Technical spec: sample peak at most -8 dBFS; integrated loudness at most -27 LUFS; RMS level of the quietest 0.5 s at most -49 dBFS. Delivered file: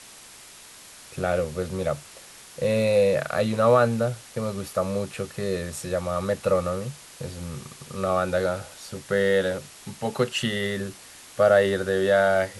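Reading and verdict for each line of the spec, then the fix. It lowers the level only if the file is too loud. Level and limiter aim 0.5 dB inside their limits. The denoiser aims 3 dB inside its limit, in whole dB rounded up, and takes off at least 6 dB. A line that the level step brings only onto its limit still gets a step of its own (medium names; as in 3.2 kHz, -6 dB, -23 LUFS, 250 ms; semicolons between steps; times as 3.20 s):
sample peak -7.0 dBFS: fail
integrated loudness -24.5 LUFS: fail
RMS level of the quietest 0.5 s -47 dBFS: fail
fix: trim -3 dB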